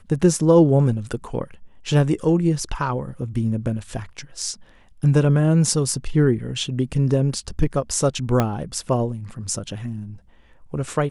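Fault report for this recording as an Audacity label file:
8.400000	8.400000	pop -6 dBFS

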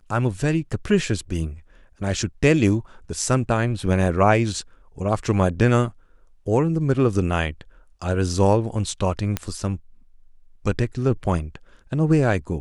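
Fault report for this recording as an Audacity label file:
9.370000	9.370000	pop -8 dBFS

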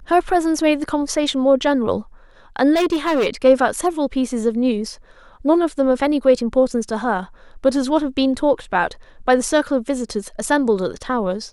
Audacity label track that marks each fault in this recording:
2.740000	3.270000	clipped -14 dBFS

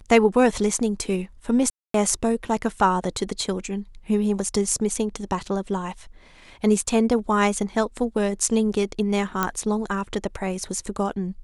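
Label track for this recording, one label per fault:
1.700000	1.940000	gap 0.243 s
9.430000	9.430000	pop -7 dBFS

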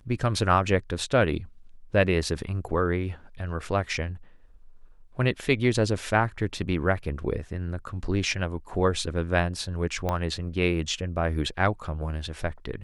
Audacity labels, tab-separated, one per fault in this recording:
10.090000	10.090000	pop -14 dBFS

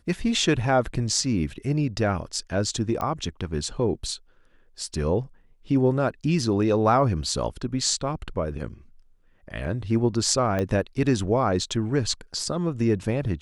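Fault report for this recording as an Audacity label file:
3.010000	3.010000	pop -16 dBFS
10.590000	10.590000	pop -14 dBFS

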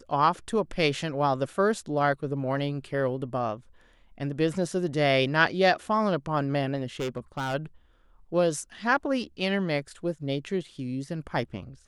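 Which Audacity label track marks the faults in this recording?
6.990000	7.550000	clipped -26.5 dBFS

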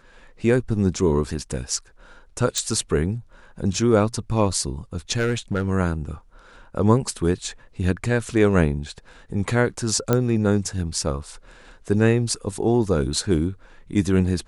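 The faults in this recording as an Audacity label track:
2.580000	2.580000	pop -10 dBFS
5.170000	5.680000	clipped -16.5 dBFS
10.130000	10.130000	pop -6 dBFS

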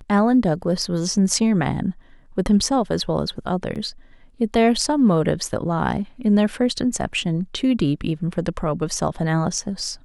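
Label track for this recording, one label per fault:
3.750000	3.760000	gap 7.5 ms

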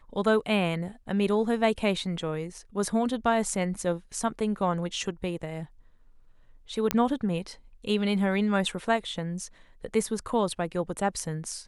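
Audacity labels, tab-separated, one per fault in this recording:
6.910000	6.910000	pop -8 dBFS

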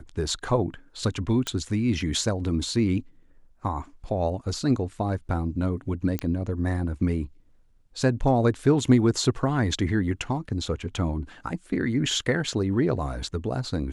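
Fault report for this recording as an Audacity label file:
1.470000	1.470000	pop -13 dBFS
6.190000	6.190000	pop -13 dBFS

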